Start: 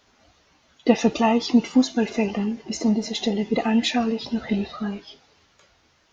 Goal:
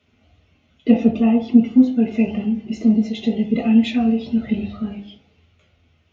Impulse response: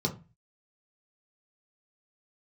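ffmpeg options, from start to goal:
-filter_complex "[0:a]asettb=1/sr,asplit=3[a][b][c];[a]atrim=end=0.914[d];[b]atrim=start=0.91:end=2.11,asetpts=PTS-STARTPTS,afade=t=in:d=0.004:c=qsin,afade=t=out:st=1.196:d=0.004:c=qsin,highshelf=f=2.7k:g=-11.5[e];[c]atrim=start=2.106[f];[d][e]acrossfade=d=0.004:c1=hsin:c2=qsin[g];[g][f]acrossfade=d=0.004:c1=qsin:c2=hsin[h];[1:a]atrim=start_sample=2205,asetrate=25578,aresample=44100[i];[h][i]afir=irnorm=-1:irlink=0,volume=-14dB"

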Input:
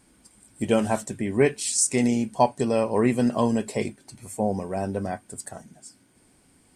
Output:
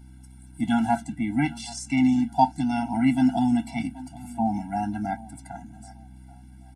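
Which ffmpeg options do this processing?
-filter_complex "[0:a]highpass=150,highshelf=f=3.5k:g=-5.5,acrossover=split=720|5700[a][b][c];[c]acompressor=threshold=-52dB:ratio=6[d];[a][b][d]amix=inputs=3:normalize=0,aeval=exprs='val(0)+0.00355*(sin(2*PI*60*n/s)+sin(2*PI*2*60*n/s)/2+sin(2*PI*3*60*n/s)/3+sin(2*PI*4*60*n/s)/4+sin(2*PI*5*60*n/s)/5)':c=same,asetrate=46722,aresample=44100,atempo=0.943874,asplit=2[e][f];[f]adelay=782,lowpass=f=3.6k:p=1,volume=-20dB,asplit=2[g][h];[h]adelay=782,lowpass=f=3.6k:p=1,volume=0.34,asplit=2[i][j];[j]adelay=782,lowpass=f=3.6k:p=1,volume=0.34[k];[g][i][k]amix=inputs=3:normalize=0[l];[e][l]amix=inputs=2:normalize=0,afftfilt=real='re*eq(mod(floor(b*sr/1024/330),2),0)':imag='im*eq(mod(floor(b*sr/1024/330),2),0)':win_size=1024:overlap=0.75,volume=3.5dB"

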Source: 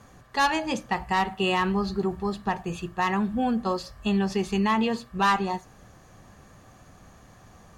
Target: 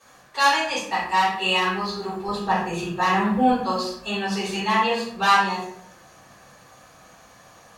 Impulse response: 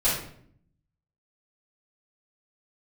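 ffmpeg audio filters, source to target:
-filter_complex "[0:a]asetnsamples=n=441:p=0,asendcmd='2.28 highpass f 390;3.52 highpass f 900',highpass=f=1.2k:p=1[a];[1:a]atrim=start_sample=2205[b];[a][b]afir=irnorm=-1:irlink=0,volume=-4.5dB"

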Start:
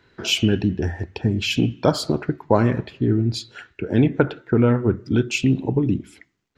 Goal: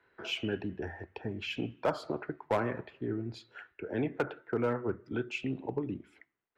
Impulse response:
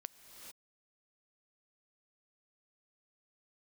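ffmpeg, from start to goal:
-filter_complex "[0:a]acrossover=split=400 2500:gain=0.224 1 0.126[a][b][c];[a][b][c]amix=inputs=3:normalize=0,acrossover=split=160|1900[d][e][f];[e]asoftclip=type=hard:threshold=-16dB[g];[d][g][f]amix=inputs=3:normalize=0,volume=-7dB"

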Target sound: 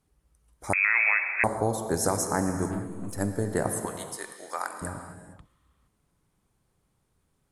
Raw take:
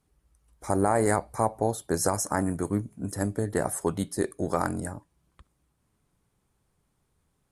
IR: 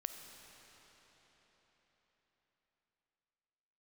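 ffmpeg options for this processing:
-filter_complex "[0:a]asettb=1/sr,asplit=3[a][b][c];[a]atrim=end=2.674[d];[b]atrim=start=2.67:end=3.18,asetpts=PTS-STARTPTS,afade=t=in:d=0.004:c=qsin,afade=t=out:st=0.506:d=0.004:c=qsin,aeval=exprs='(tanh(39.8*val(0)+0.25)-tanh(0.25))/39.8':c=same[e];[c]atrim=start=3.176[f];[d][e]acrossfade=d=0.004:c1=hsin:c2=qsin[g];[g][f]acrossfade=d=0.004:c1=qsin:c2=hsin,asettb=1/sr,asplit=3[h][i][j];[h]atrim=end=3.854[k];[i]atrim=start=3.85:end=4.82,asetpts=PTS-STARTPTS,afade=t=in:d=0.004:c=qsin,afade=t=out:st=0.966:d=0.004:c=qsin,highpass=1k[l];[j]atrim=start=4.816[m];[k][l]acrossfade=d=0.004:c1=hsin:c2=qsin[n];[n][m]acrossfade=d=0.004:c1=qsin:c2=hsin[o];[1:a]atrim=start_sample=2205,afade=t=out:st=0.43:d=0.01,atrim=end_sample=19404,asetrate=35280,aresample=44100[p];[o][p]afir=irnorm=-1:irlink=0,asettb=1/sr,asplit=3[q][r][s];[q]atrim=end=0.734[t];[r]atrim=start=0.73:end=1.44,asetpts=PTS-STARTPTS,afade=t=in:d=0.004:c=qsin,afade=t=out:st=0.706:d=0.004:c=qsin,lowpass=f=2.3k:t=q:w=0.5098,lowpass=f=2.3k:t=q:w=0.6013,lowpass=f=2.3k:t=q:w=0.9,lowpass=f=2.3k:t=q:w=2.563,afreqshift=-2700[u];[s]atrim=start=1.436[v];[t][u]acrossfade=d=0.004:c1=hsin:c2=qsin[w];[w][v]acrossfade=d=0.004:c1=qsin:c2=hsin,volume=1.5dB"

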